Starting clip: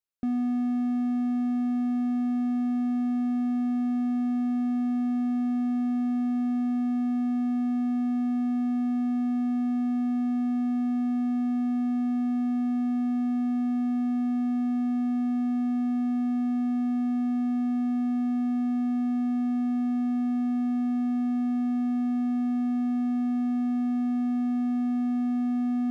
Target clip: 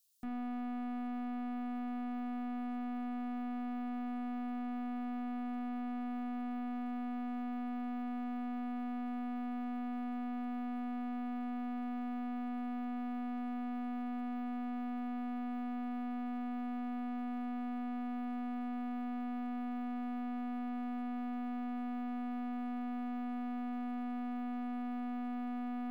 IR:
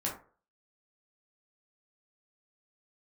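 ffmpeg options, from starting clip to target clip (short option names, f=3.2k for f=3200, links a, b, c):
-filter_complex "[0:a]aexciter=amount=9.3:drive=2.6:freq=3k,aeval=exprs='(tanh(112*val(0)+0.5)-tanh(0.5))/112':c=same,asplit=2[a][b];[1:a]atrim=start_sample=2205[c];[b][c]afir=irnorm=-1:irlink=0,volume=-9dB[d];[a][d]amix=inputs=2:normalize=0,volume=-2dB"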